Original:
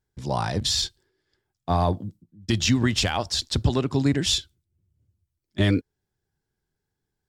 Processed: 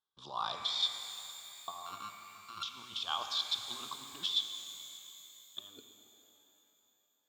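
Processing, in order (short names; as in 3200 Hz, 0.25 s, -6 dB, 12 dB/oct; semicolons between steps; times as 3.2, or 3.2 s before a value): 1.86–2.63 sample sorter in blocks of 32 samples; negative-ratio compressor -27 dBFS, ratio -0.5; double band-pass 2000 Hz, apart 1.6 oct; shimmer reverb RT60 3.2 s, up +12 st, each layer -8 dB, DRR 6 dB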